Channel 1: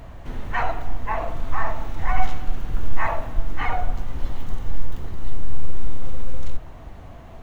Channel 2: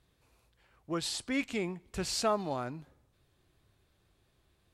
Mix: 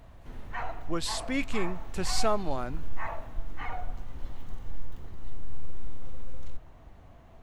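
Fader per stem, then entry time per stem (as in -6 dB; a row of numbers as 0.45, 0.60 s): -11.5, +1.5 dB; 0.00, 0.00 s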